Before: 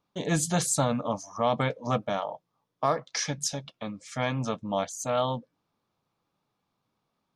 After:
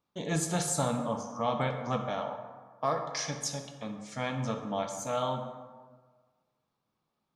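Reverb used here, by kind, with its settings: plate-style reverb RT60 1.5 s, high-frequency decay 0.5×, DRR 4 dB; gain -5 dB

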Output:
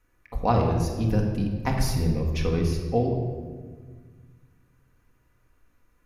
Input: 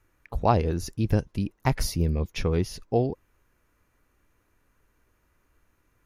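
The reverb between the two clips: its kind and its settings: shoebox room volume 1700 m³, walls mixed, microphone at 1.9 m; gain -3 dB

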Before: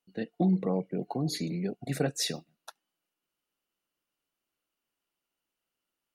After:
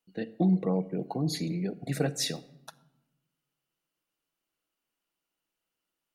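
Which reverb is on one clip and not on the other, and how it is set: shoebox room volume 3700 m³, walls furnished, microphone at 0.61 m

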